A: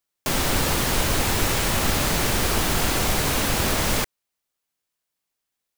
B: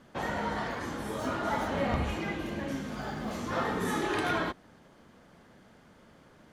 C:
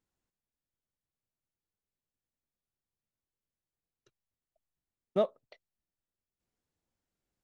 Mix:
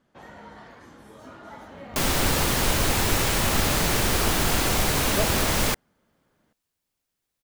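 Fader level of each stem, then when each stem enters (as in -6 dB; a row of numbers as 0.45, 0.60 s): -0.5, -12.0, -1.5 dB; 1.70, 0.00, 0.00 s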